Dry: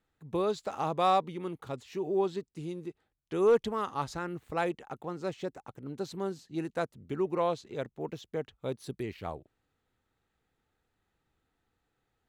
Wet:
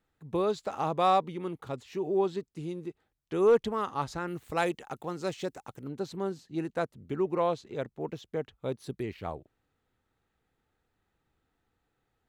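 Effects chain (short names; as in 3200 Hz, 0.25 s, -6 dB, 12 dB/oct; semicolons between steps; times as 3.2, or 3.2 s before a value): high shelf 3300 Hz -2.5 dB, from 4.27 s +8.5 dB, from 5.88 s -4 dB; gain +1.5 dB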